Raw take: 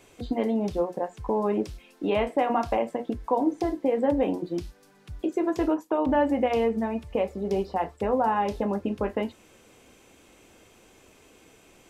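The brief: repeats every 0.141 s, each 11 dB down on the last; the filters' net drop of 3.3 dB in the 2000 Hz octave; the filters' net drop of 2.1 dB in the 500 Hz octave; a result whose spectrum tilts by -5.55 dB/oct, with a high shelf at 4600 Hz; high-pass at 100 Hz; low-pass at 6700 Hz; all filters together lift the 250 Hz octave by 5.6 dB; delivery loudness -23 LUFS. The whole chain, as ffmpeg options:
-af "highpass=100,lowpass=6.7k,equalizer=f=250:t=o:g=8.5,equalizer=f=500:t=o:g=-5,equalizer=f=2k:t=o:g=-5,highshelf=f=4.6k:g=6,aecho=1:1:141|282|423:0.282|0.0789|0.0221,volume=1.5dB"

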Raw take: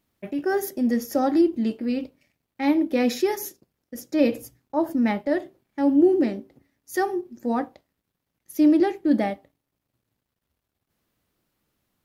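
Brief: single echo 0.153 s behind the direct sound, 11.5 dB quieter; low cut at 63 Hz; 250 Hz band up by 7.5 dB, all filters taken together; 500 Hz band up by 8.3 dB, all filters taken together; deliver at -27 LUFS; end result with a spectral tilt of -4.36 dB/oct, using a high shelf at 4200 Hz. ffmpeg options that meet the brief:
-af "highpass=63,equalizer=f=250:t=o:g=6,equalizer=f=500:t=o:g=9,highshelf=f=4.2k:g=-4,aecho=1:1:153:0.266,volume=-11dB"

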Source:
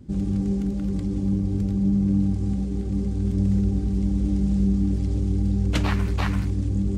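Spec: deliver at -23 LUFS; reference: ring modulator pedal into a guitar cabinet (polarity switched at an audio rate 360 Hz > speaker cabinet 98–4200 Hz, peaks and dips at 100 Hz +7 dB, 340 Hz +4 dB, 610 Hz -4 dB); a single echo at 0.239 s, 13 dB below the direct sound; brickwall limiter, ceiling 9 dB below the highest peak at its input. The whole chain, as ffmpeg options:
-af "alimiter=limit=-18.5dB:level=0:latency=1,aecho=1:1:239:0.224,aeval=exprs='val(0)*sgn(sin(2*PI*360*n/s))':c=same,highpass=98,equalizer=f=100:t=q:w=4:g=7,equalizer=f=340:t=q:w=4:g=4,equalizer=f=610:t=q:w=4:g=-4,lowpass=f=4.2k:w=0.5412,lowpass=f=4.2k:w=1.3066,volume=2.5dB"

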